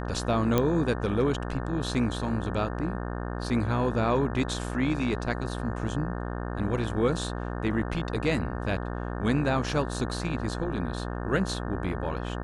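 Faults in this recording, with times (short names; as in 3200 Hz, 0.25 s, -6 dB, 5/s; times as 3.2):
buzz 60 Hz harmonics 30 -33 dBFS
0.58 pop -10 dBFS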